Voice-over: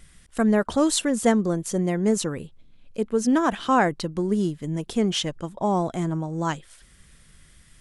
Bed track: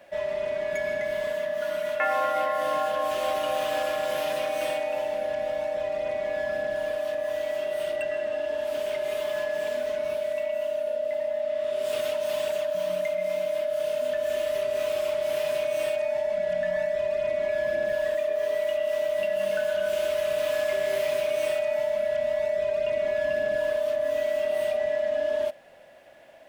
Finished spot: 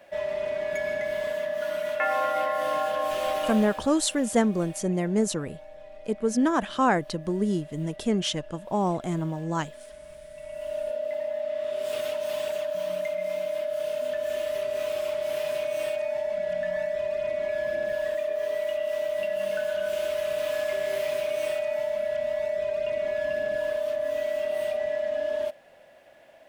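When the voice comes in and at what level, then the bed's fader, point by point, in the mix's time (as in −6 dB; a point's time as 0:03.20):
3.10 s, −2.5 dB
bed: 0:03.48 −0.5 dB
0:03.89 −17 dB
0:10.29 −17 dB
0:10.76 −2 dB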